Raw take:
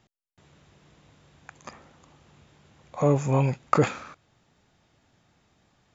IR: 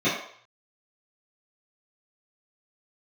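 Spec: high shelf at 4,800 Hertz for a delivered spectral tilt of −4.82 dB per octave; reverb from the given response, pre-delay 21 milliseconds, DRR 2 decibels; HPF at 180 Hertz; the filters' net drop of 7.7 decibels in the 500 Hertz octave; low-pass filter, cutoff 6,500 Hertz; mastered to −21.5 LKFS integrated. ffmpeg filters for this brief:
-filter_complex "[0:a]highpass=180,lowpass=6500,equalizer=frequency=500:width_type=o:gain=-9,highshelf=frequency=4800:gain=-3.5,asplit=2[link_01][link_02];[1:a]atrim=start_sample=2205,adelay=21[link_03];[link_02][link_03]afir=irnorm=-1:irlink=0,volume=-17.5dB[link_04];[link_01][link_04]amix=inputs=2:normalize=0,volume=5.5dB"

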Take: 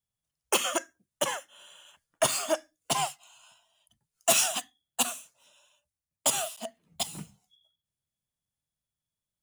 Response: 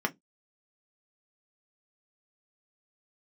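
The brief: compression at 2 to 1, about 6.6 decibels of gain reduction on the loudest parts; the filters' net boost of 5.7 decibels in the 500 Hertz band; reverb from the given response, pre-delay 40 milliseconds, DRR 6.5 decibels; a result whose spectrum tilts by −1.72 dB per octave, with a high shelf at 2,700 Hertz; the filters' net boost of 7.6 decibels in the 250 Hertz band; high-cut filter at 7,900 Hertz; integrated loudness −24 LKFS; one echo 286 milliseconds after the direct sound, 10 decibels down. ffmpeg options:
-filter_complex "[0:a]lowpass=7900,equalizer=frequency=250:width_type=o:gain=7.5,equalizer=frequency=500:width_type=o:gain=6.5,highshelf=frequency=2700:gain=4,acompressor=threshold=-28dB:ratio=2,aecho=1:1:286:0.316,asplit=2[link_01][link_02];[1:a]atrim=start_sample=2205,adelay=40[link_03];[link_02][link_03]afir=irnorm=-1:irlink=0,volume=-14.5dB[link_04];[link_01][link_04]amix=inputs=2:normalize=0,volume=7.5dB"

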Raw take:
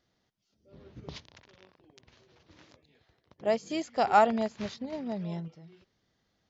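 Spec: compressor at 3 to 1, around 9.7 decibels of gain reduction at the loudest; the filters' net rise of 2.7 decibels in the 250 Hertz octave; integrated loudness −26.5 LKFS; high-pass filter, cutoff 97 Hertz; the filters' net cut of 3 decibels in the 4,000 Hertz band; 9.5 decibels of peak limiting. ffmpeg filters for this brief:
ffmpeg -i in.wav -af "highpass=97,equalizer=frequency=250:width_type=o:gain=3.5,equalizer=frequency=4000:width_type=o:gain=-4,acompressor=threshold=-29dB:ratio=3,volume=11dB,alimiter=limit=-16dB:level=0:latency=1" out.wav

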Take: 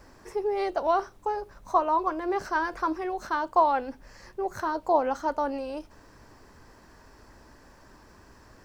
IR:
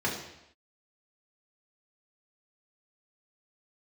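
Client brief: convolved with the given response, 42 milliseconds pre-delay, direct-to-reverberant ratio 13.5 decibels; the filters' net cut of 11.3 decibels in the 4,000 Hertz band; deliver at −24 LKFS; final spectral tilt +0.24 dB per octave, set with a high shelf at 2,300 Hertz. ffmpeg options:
-filter_complex "[0:a]highshelf=frequency=2300:gain=-8,equalizer=frequency=4000:width_type=o:gain=-7,asplit=2[link_01][link_02];[1:a]atrim=start_sample=2205,adelay=42[link_03];[link_02][link_03]afir=irnorm=-1:irlink=0,volume=-23dB[link_04];[link_01][link_04]amix=inputs=2:normalize=0,volume=5dB"

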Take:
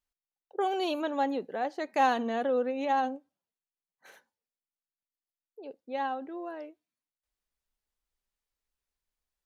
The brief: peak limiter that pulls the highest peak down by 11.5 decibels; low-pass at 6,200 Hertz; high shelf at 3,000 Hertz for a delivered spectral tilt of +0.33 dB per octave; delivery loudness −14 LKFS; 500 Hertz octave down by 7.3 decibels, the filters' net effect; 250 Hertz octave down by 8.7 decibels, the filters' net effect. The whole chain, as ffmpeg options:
ffmpeg -i in.wav -af "lowpass=6200,equalizer=frequency=250:width_type=o:gain=-8,equalizer=frequency=500:width_type=o:gain=-7,highshelf=frequency=3000:gain=3,volume=24dB,alimiter=limit=-3dB:level=0:latency=1" out.wav

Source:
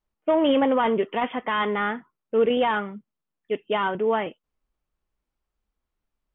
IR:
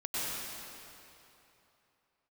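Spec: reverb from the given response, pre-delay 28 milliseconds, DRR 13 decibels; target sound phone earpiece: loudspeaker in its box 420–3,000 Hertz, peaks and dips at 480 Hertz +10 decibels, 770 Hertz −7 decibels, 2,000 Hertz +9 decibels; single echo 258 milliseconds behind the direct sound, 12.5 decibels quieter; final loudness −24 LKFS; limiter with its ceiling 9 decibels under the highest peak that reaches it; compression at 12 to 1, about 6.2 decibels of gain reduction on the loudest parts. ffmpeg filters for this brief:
-filter_complex "[0:a]acompressor=threshold=-22dB:ratio=12,alimiter=limit=-23dB:level=0:latency=1,aecho=1:1:258:0.237,asplit=2[link_01][link_02];[1:a]atrim=start_sample=2205,adelay=28[link_03];[link_02][link_03]afir=irnorm=-1:irlink=0,volume=-19.5dB[link_04];[link_01][link_04]amix=inputs=2:normalize=0,highpass=420,equalizer=frequency=480:width_type=q:width=4:gain=10,equalizer=frequency=770:width_type=q:width=4:gain=-7,equalizer=frequency=2000:width_type=q:width=4:gain=9,lowpass=frequency=3000:width=0.5412,lowpass=frequency=3000:width=1.3066,volume=6.5dB"

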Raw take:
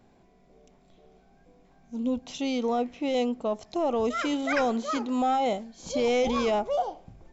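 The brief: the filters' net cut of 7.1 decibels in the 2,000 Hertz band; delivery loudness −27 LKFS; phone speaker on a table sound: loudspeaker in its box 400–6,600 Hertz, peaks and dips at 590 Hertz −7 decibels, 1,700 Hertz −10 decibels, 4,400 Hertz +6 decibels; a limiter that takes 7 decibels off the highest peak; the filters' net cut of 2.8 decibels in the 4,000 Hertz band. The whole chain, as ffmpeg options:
ffmpeg -i in.wav -af "equalizer=frequency=2000:width_type=o:gain=-3.5,equalizer=frequency=4000:width_type=o:gain=-4,alimiter=limit=-23.5dB:level=0:latency=1,highpass=frequency=400:width=0.5412,highpass=frequency=400:width=1.3066,equalizer=frequency=590:width_type=q:width=4:gain=-7,equalizer=frequency=1700:width_type=q:width=4:gain=-10,equalizer=frequency=4400:width_type=q:width=4:gain=6,lowpass=frequency=6600:width=0.5412,lowpass=frequency=6600:width=1.3066,volume=9dB" out.wav

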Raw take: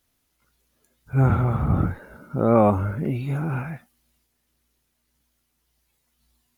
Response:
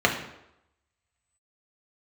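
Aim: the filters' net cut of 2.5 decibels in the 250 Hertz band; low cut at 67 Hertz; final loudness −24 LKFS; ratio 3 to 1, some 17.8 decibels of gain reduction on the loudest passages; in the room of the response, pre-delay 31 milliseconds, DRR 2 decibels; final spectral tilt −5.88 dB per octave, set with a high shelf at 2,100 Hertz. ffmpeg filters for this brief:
-filter_complex "[0:a]highpass=67,equalizer=frequency=250:width_type=o:gain=-3.5,highshelf=frequency=2100:gain=7.5,acompressor=threshold=-38dB:ratio=3,asplit=2[link_01][link_02];[1:a]atrim=start_sample=2205,adelay=31[link_03];[link_02][link_03]afir=irnorm=-1:irlink=0,volume=-19.5dB[link_04];[link_01][link_04]amix=inputs=2:normalize=0,volume=12dB"

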